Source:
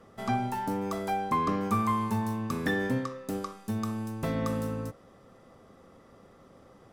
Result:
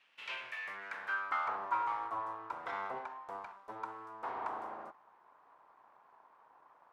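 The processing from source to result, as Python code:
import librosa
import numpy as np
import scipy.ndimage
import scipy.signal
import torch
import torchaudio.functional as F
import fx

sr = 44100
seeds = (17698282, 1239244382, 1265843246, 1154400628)

y = np.abs(x)
y = fx.notch_comb(y, sr, f0_hz=210.0, at=(1.65, 2.73))
y = fx.filter_sweep_bandpass(y, sr, from_hz=2800.0, to_hz=1000.0, start_s=0.28, end_s=1.61, q=3.6)
y = F.gain(torch.from_numpy(y), 4.0).numpy()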